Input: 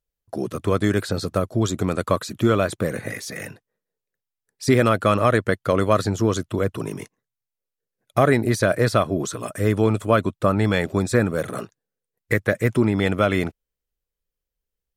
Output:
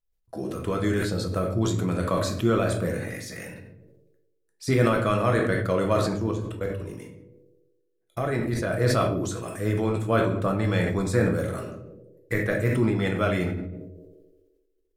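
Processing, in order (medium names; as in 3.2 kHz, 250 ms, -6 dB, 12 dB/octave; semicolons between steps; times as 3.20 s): bass shelf 87 Hz +7.5 dB; hum notches 50/100/150 Hz; 6.13–8.73 s: level held to a coarse grid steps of 20 dB; band-passed feedback delay 86 ms, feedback 81%, band-pass 400 Hz, level -23.5 dB; simulated room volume 82 m³, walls mixed, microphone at 0.64 m; decay stretcher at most 37 dB/s; trim -8 dB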